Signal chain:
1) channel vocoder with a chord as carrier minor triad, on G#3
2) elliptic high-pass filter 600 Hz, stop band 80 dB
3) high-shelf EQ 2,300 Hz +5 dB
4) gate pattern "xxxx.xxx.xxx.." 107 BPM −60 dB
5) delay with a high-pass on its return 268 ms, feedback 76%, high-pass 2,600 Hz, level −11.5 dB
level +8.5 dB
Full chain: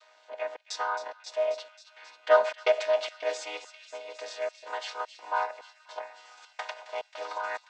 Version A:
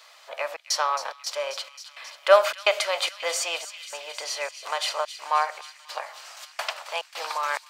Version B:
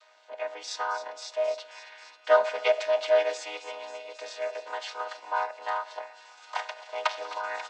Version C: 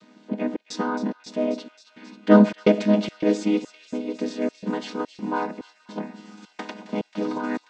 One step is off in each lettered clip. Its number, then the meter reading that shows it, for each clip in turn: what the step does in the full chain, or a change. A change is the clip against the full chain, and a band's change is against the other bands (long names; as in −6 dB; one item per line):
1, 8 kHz band +8.5 dB
4, change in momentary loudness spread −3 LU
2, 500 Hz band +2.5 dB